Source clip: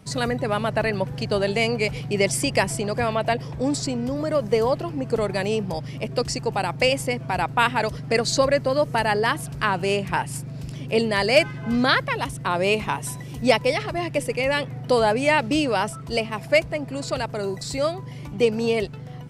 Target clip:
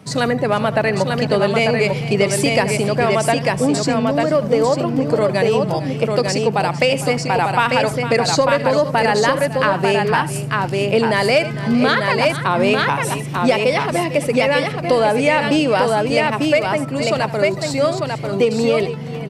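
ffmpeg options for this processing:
ffmpeg -i in.wav -filter_complex "[0:a]highpass=140,highshelf=frequency=3900:gain=-5,aecho=1:1:77|454|895:0.15|0.15|0.596,asplit=2[link_01][link_02];[link_02]asoftclip=type=tanh:threshold=-13dB,volume=-5dB[link_03];[link_01][link_03]amix=inputs=2:normalize=0,acompressor=threshold=-15dB:ratio=6,volume=4dB" out.wav

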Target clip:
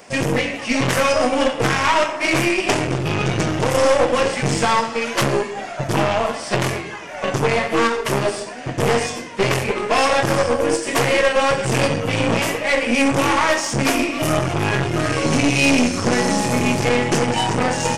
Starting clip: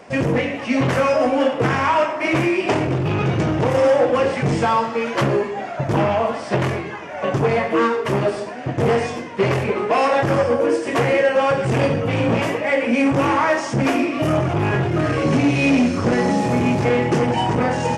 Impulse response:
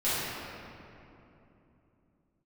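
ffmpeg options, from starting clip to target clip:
-af "aeval=exprs='0.422*(cos(1*acos(clip(val(0)/0.422,-1,1)))-cos(1*PI/2))+0.133*(cos(2*acos(clip(val(0)/0.422,-1,1)))-cos(2*PI/2))+0.00944*(cos(7*acos(clip(val(0)/0.422,-1,1)))-cos(7*PI/2))':channel_layout=same,crystalizer=i=4:c=0,volume=-1.5dB"

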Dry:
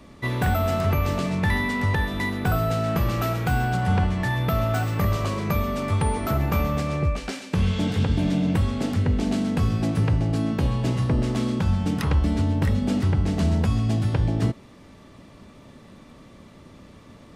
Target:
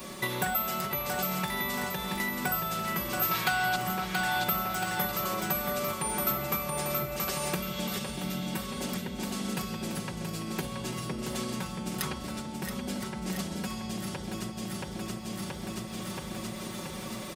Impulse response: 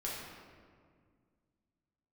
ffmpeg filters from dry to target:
-filter_complex "[0:a]asettb=1/sr,asplit=3[link_01][link_02][link_03];[link_01]atrim=end=3.314[link_04];[link_02]atrim=start=3.31:end=3.76,asetpts=PTS-STARTPTS,afade=type=in:duration=0.004:curve=qsin,afade=type=out:start_time=0.446:duration=0.004:curve=qsin,equalizer=frequency=1000:width_type=o:width=1:gain=7,equalizer=frequency=2000:width_type=o:width=1:gain=7,equalizer=frequency=4000:width_type=o:width=1:gain=11[link_05];[link_03]atrim=start=3.756[link_06];[link_04][link_05]acrossfade=duration=0.004:curve1=hsin:curve2=qsin[link_07];[link_07][link_06]acrossfade=duration=0.004:curve1=qsin:curve2=hsin,aecho=1:1:677|1354|2031|2708|3385|4062|4739:0.562|0.298|0.158|0.0837|0.0444|0.0235|0.0125,acompressor=threshold=-34dB:ratio=10,aemphasis=mode=production:type=bsi,aecho=1:1:5.4:0.79,volume=6.5dB"

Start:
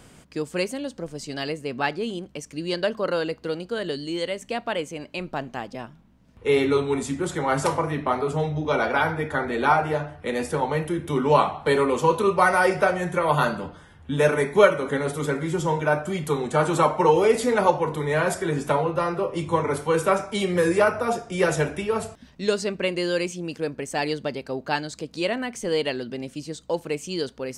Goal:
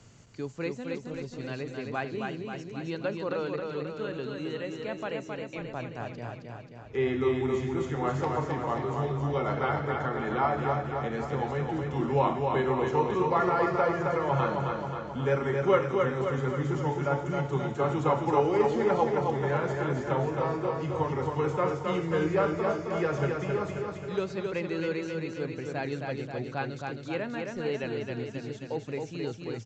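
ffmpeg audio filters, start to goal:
ffmpeg -i in.wav -filter_complex "[0:a]acrossover=split=3100[link_01][link_02];[link_02]acompressor=threshold=-52dB:ratio=4:attack=1:release=60[link_03];[link_01][link_03]amix=inputs=2:normalize=0,equalizer=frequency=120:width_type=o:width=0.49:gain=11,acrossover=split=130|5500[link_04][link_05][link_06];[link_06]acontrast=79[link_07];[link_04][link_05][link_07]amix=inputs=3:normalize=0,asetrate=41013,aresample=44100,asplit=2[link_08][link_09];[link_09]aecho=0:1:267|534|801|1068|1335|1602|1869|2136:0.631|0.372|0.22|0.13|0.0765|0.0451|0.0266|0.0157[link_10];[link_08][link_10]amix=inputs=2:normalize=0,aresample=16000,aresample=44100,volume=-8dB" out.wav

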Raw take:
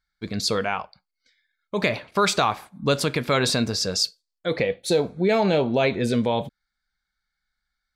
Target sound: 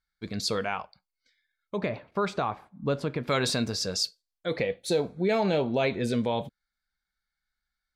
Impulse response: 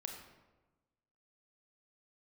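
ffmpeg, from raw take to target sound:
-filter_complex "[0:a]asplit=3[link_01][link_02][link_03];[link_01]afade=type=out:start_time=1.75:duration=0.02[link_04];[link_02]lowpass=frequency=1000:poles=1,afade=type=in:start_time=1.75:duration=0.02,afade=type=out:start_time=3.27:duration=0.02[link_05];[link_03]afade=type=in:start_time=3.27:duration=0.02[link_06];[link_04][link_05][link_06]amix=inputs=3:normalize=0,volume=-5dB" -ar 48000 -c:a libvorbis -b:a 128k

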